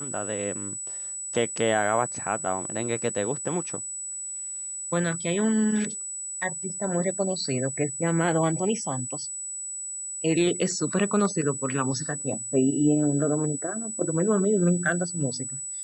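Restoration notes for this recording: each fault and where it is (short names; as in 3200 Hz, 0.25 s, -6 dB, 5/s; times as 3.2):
tone 7900 Hz -32 dBFS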